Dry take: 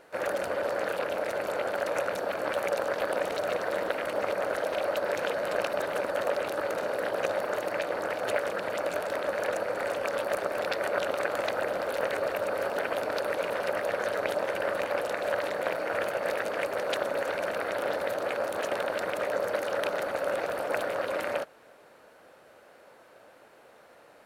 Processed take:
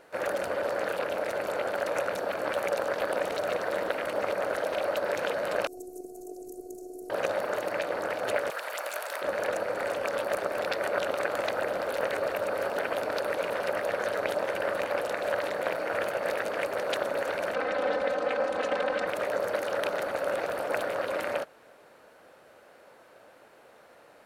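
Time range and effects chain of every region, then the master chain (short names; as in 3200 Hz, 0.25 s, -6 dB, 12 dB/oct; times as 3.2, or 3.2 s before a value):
5.67–7.1 elliptic band-stop 420–6700 Hz + robotiser 364 Hz
8.5–9.22 HPF 800 Hz + high shelf 8400 Hz +11 dB
17.54–19.07 air absorption 84 m + comb 3.9 ms, depth 79%
whole clip: dry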